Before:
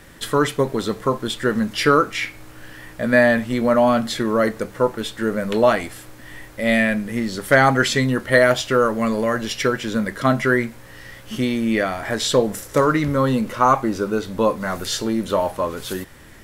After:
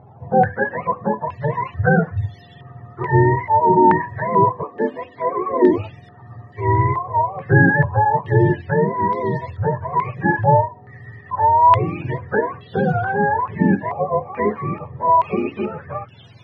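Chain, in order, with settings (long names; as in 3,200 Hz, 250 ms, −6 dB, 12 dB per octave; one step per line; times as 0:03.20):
frequency axis turned over on the octave scale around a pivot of 470 Hz
0:04.63–0:05.78: low shelf with overshoot 200 Hz −11 dB, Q 3
low-pass on a step sequencer 2.3 Hz 840–3,400 Hz
level −1 dB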